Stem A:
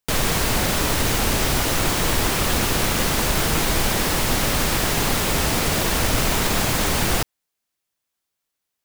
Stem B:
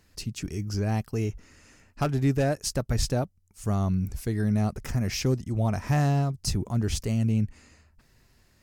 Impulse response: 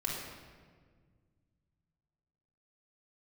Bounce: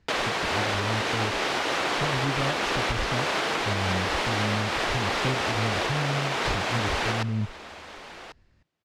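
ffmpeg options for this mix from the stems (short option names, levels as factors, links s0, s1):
-filter_complex "[0:a]highpass=440,volume=1.19,asplit=3[s0][s1][s2];[s1]volume=0.0944[s3];[s2]volume=0.112[s4];[1:a]volume=0.668[s5];[2:a]atrim=start_sample=2205[s6];[s3][s6]afir=irnorm=-1:irlink=0[s7];[s4]aecho=0:1:1092:1[s8];[s0][s5][s7][s8]amix=inputs=4:normalize=0,lowpass=3700,lowshelf=f=140:g=6.5,alimiter=limit=0.168:level=0:latency=1:release=477"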